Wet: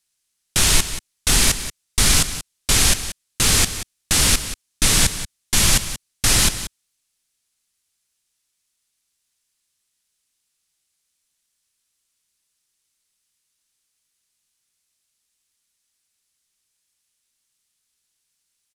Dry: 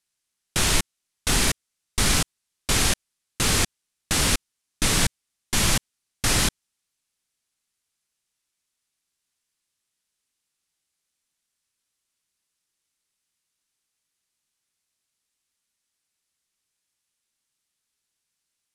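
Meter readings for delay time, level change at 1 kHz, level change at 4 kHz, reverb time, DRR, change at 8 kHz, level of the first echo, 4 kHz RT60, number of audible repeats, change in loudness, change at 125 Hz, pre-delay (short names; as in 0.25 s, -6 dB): 0.182 s, +1.5 dB, +5.5 dB, none, none, +7.0 dB, -12.5 dB, none, 1, +5.5 dB, +3.5 dB, none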